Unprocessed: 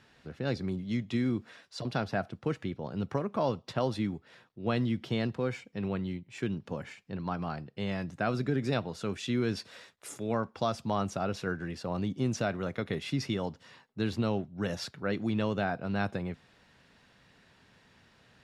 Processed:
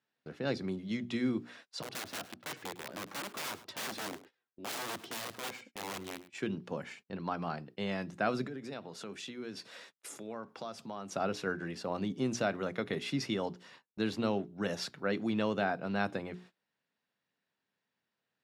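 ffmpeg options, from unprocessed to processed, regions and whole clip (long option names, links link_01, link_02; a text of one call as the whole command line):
ffmpeg -i in.wav -filter_complex "[0:a]asettb=1/sr,asplit=3[link_01][link_02][link_03];[link_01]atrim=end=1.824[link_04];[link_02]atrim=start=1.82:end=6.35,asetpts=PTS-STARTPTS,afade=type=in:duration=0.004:curve=qsin,afade=type=out:start_time=4.526:duration=0.004:curve=qsin,flanger=delay=2.3:depth=1.5:regen=-12:speed=1.2:shape=triangular,aeval=exprs='(mod(47.3*val(0)+1,2)-1)/47.3':channel_layout=same,aecho=1:1:104:0.15,atrim=end_sample=199773[link_05];[link_03]atrim=start=6.346[link_06];[link_04][link_05]acrossfade=duration=0.004:curve1=hsin:curve2=qsin[link_07];[link_07][link_06]acrossfade=duration=0.004:curve1=qsin:curve2=hsin,asettb=1/sr,asplit=3[link_08][link_09][link_10];[link_08]atrim=end=8.474[link_11];[link_09]atrim=start=8.47:end=11.11,asetpts=PTS-STARTPTS,afade=type=in:duration=0.004:curve=qsin,afade=type=out:start_time=2.636:duration=0.004:curve=qsin,highpass=110,acompressor=threshold=-42dB:ratio=2.5:attack=3.2:release=140:knee=1:detection=peak[link_12];[link_10]atrim=start=11.106[link_13];[link_11][link_12]acrossfade=duration=0.004:curve1=hsin:curve2=qsin[link_14];[link_14][link_13]acrossfade=duration=0.004:curve1=qsin:curve2=hsin,highpass=180,bandreject=frequency=60:width_type=h:width=6,bandreject=frequency=120:width_type=h:width=6,bandreject=frequency=180:width_type=h:width=6,bandreject=frequency=240:width_type=h:width=6,bandreject=frequency=300:width_type=h:width=6,bandreject=frequency=360:width_type=h:width=6,bandreject=frequency=420:width_type=h:width=6,agate=range=-24dB:threshold=-54dB:ratio=16:detection=peak" out.wav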